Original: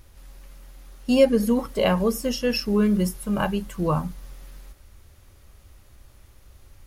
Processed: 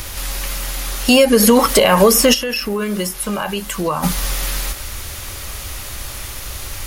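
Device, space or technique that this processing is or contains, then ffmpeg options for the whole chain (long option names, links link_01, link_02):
mastering chain: -filter_complex "[0:a]equalizer=frequency=1600:width_type=o:width=0.77:gain=-1.5,acrossover=split=260|3300|7600[link_01][link_02][link_03][link_04];[link_01]acompressor=threshold=-34dB:ratio=4[link_05];[link_02]acompressor=threshold=-22dB:ratio=4[link_06];[link_03]acompressor=threshold=-48dB:ratio=4[link_07];[link_04]acompressor=threshold=-44dB:ratio=4[link_08];[link_05][link_06][link_07][link_08]amix=inputs=4:normalize=0,acompressor=threshold=-29dB:ratio=2.5,asoftclip=type=tanh:threshold=-16dB,tiltshelf=frequency=760:gain=-6.5,asoftclip=type=hard:threshold=-19dB,alimiter=level_in=26dB:limit=-1dB:release=50:level=0:latency=1,asplit=3[link_09][link_10][link_11];[link_09]afade=type=out:start_time=2.33:duration=0.02[link_12];[link_10]agate=range=-10dB:threshold=-6dB:ratio=16:detection=peak,afade=type=in:start_time=2.33:duration=0.02,afade=type=out:start_time=4.02:duration=0.02[link_13];[link_11]afade=type=in:start_time=4.02:duration=0.02[link_14];[link_12][link_13][link_14]amix=inputs=3:normalize=0,volume=-1dB"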